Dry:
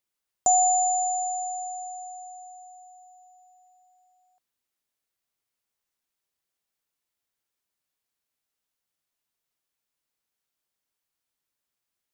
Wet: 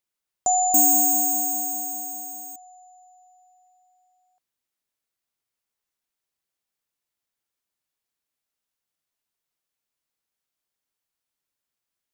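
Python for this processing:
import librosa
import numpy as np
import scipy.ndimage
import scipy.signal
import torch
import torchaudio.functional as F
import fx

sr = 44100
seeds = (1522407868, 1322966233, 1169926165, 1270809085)

y = fx.resample_bad(x, sr, factor=6, down='none', up='zero_stuff', at=(0.74, 2.56))
y = F.gain(torch.from_numpy(y), -1.0).numpy()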